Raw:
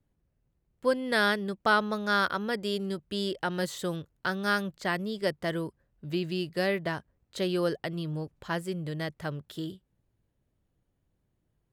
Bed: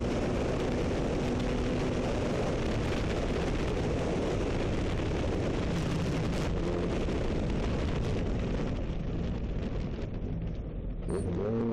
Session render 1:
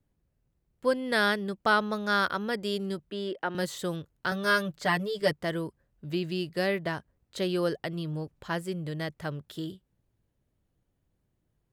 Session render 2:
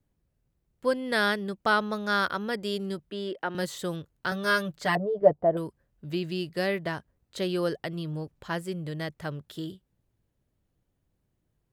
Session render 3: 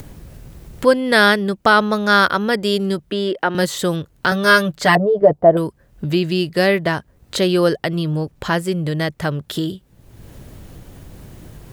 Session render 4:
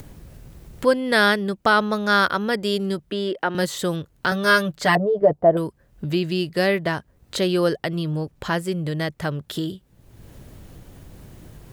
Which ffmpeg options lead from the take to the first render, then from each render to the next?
ffmpeg -i in.wav -filter_complex "[0:a]asettb=1/sr,asplit=3[link_01][link_02][link_03];[link_01]atrim=end=3.104[link_04];[link_02]atrim=start=3.1:end=3.55,asetpts=PTS-STARTPTS,afade=type=in:duration=0.004:curve=qsin,afade=type=out:start_time=0.446:duration=0.004:curve=qsin,acrossover=split=190 2900:gain=0.0891 1 0.2[link_05][link_06][link_07];[link_05][link_06][link_07]amix=inputs=3:normalize=0[link_08];[link_03]atrim=start=3.546[link_09];[link_04][link_08]acrossfade=duration=0.004:curve1=hsin:curve2=qsin[link_10];[link_10][link_09]acrossfade=duration=0.004:curve1=qsin:curve2=hsin,asettb=1/sr,asplit=3[link_11][link_12][link_13];[link_11]atrim=end=4.314[link_14];[link_12]atrim=start=4.31:end=5.33,asetpts=PTS-STARTPTS,afade=type=in:duration=0.004:curve=qsin,afade=type=out:start_time=1.016:duration=0.004:curve=qsin,aecho=1:1:6.8:0.99,atrim=end_sample=44982[link_15];[link_13]atrim=start=5.326[link_16];[link_14][link_15]acrossfade=duration=0.004:curve1=hsin:curve2=qsin[link_17];[link_17][link_16]acrossfade=duration=0.004:curve1=qsin:curve2=hsin" out.wav
ffmpeg -i in.wav -filter_complex "[0:a]asettb=1/sr,asplit=3[link_01][link_02][link_03];[link_01]atrim=end=4.954[link_04];[link_02]atrim=start=4.95:end=5.57,asetpts=PTS-STARTPTS,afade=type=in:duration=0.004:curve=qsin,afade=type=out:start_time=0.616:duration=0.004:curve=qsin,lowpass=frequency=690:width_type=q:width=3.9[link_05];[link_03]atrim=start=5.566[link_06];[link_04][link_05]acrossfade=duration=0.004:curve1=hsin:curve2=qsin[link_07];[link_07][link_06]acrossfade=duration=0.004:curve1=qsin:curve2=hsin" out.wav
ffmpeg -i in.wav -af "acompressor=mode=upward:threshold=-30dB:ratio=2.5,alimiter=level_in=12.5dB:limit=-1dB:release=50:level=0:latency=1" out.wav
ffmpeg -i in.wav -af "volume=-4.5dB" out.wav

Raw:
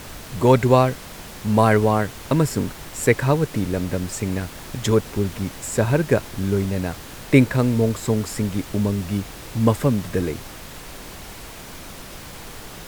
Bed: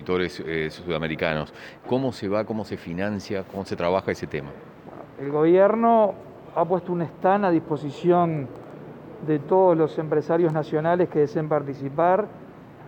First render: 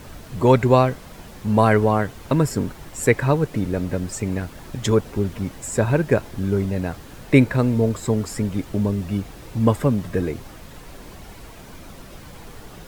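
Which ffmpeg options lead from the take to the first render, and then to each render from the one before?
ffmpeg -i in.wav -af "afftdn=noise_reduction=8:noise_floor=-38" out.wav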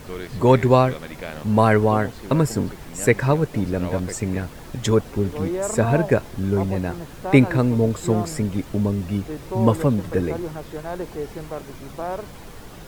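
ffmpeg -i in.wav -i bed.wav -filter_complex "[1:a]volume=-9.5dB[link_01];[0:a][link_01]amix=inputs=2:normalize=0" out.wav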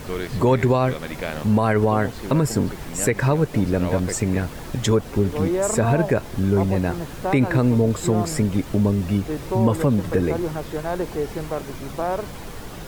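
ffmpeg -i in.wav -filter_complex "[0:a]asplit=2[link_01][link_02];[link_02]acompressor=threshold=-24dB:ratio=6,volume=-3dB[link_03];[link_01][link_03]amix=inputs=2:normalize=0,alimiter=limit=-9dB:level=0:latency=1:release=58" out.wav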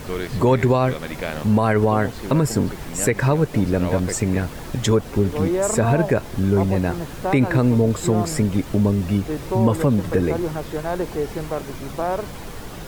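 ffmpeg -i in.wav -af "volume=1dB" out.wav

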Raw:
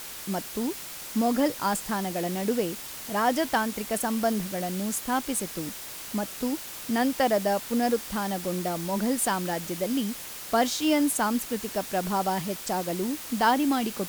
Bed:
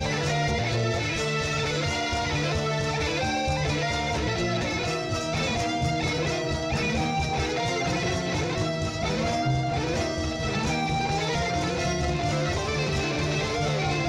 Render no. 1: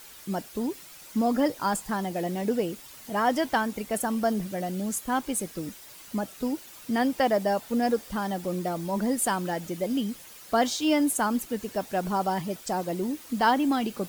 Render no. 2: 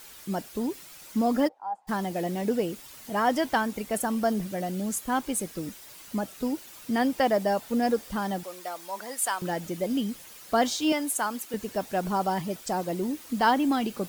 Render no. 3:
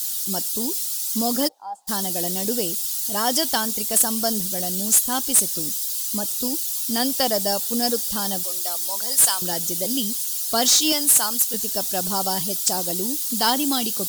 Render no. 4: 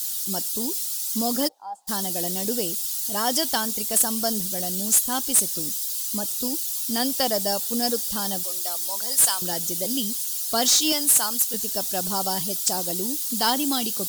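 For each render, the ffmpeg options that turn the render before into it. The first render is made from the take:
ffmpeg -i in.wav -af "afftdn=noise_reduction=10:noise_floor=-40" out.wav
ffmpeg -i in.wav -filter_complex "[0:a]asplit=3[link_01][link_02][link_03];[link_01]afade=type=out:start_time=1.47:duration=0.02[link_04];[link_02]bandpass=frequency=800:width_type=q:width=10,afade=type=in:start_time=1.47:duration=0.02,afade=type=out:start_time=1.87:duration=0.02[link_05];[link_03]afade=type=in:start_time=1.87:duration=0.02[link_06];[link_04][link_05][link_06]amix=inputs=3:normalize=0,asettb=1/sr,asplit=3[link_07][link_08][link_09];[link_07]atrim=end=8.434[link_10];[link_08]atrim=start=8.43:end=9.42,asetpts=PTS-STARTPTS,afade=type=in:duration=0.004:curve=qsin,afade=type=out:start_time=0.986:duration=0.004:curve=qsin,highpass=790[link_11];[link_09]atrim=start=9.416[link_12];[link_10][link_11]acrossfade=duration=0.004:curve1=hsin:curve2=qsin[link_13];[link_13][link_12]acrossfade=duration=0.004:curve1=qsin:curve2=hsin,asettb=1/sr,asplit=3[link_14][link_15][link_16];[link_14]atrim=end=10.924[link_17];[link_15]atrim=start=10.92:end=11.54,asetpts=PTS-STARTPTS,afade=type=in:duration=0.004:curve=qsin,afade=type=out:start_time=0.616:duration=0.004:curve=qsin,highpass=frequency=690:poles=1[link_18];[link_16]atrim=start=11.536[link_19];[link_17][link_18]acrossfade=duration=0.004:curve1=hsin:curve2=qsin[link_20];[link_20][link_19]acrossfade=duration=0.004:curve1=qsin:curve2=hsin" out.wav
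ffmpeg -i in.wav -af "aexciter=amount=7.4:drive=6.3:freq=3300,asoftclip=type=hard:threshold=-12dB" out.wav
ffmpeg -i in.wav -af "volume=-2dB" out.wav

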